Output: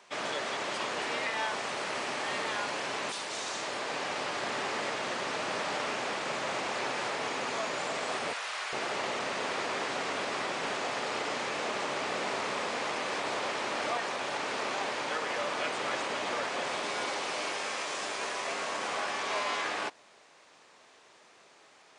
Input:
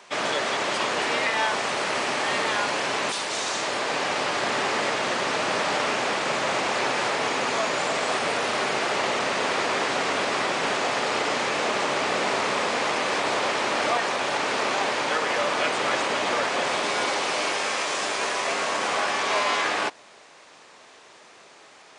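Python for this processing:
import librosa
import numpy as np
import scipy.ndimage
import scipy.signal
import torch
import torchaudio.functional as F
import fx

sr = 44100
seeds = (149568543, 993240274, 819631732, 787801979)

y = fx.highpass(x, sr, hz=990.0, slope=12, at=(8.33, 8.73))
y = y * librosa.db_to_amplitude(-8.5)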